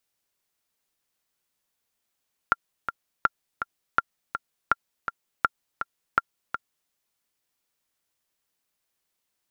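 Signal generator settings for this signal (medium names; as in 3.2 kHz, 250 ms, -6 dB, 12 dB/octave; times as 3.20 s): metronome 164 bpm, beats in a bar 2, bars 6, 1.38 kHz, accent 9 dB -5.5 dBFS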